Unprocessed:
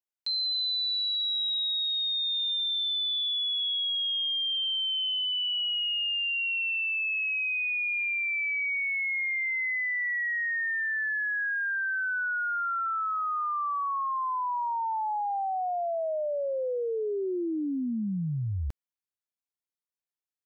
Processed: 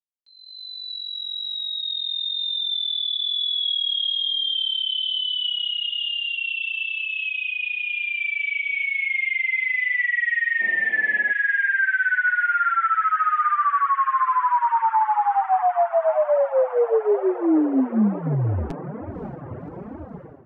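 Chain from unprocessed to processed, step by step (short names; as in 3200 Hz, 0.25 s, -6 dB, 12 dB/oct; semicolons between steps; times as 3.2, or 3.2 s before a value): opening faded in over 3.88 s; air absorption 54 m; diffused feedback echo 0.561 s, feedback 76%, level -15 dB; flange 1.1 Hz, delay 3 ms, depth 5.3 ms, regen +6%; reverb removal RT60 0.89 s; 10.6–11.31 band noise 180–780 Hz -59 dBFS; AGC gain up to 15 dB; dynamic EQ 2600 Hz, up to -7 dB, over -34 dBFS, Q 2.5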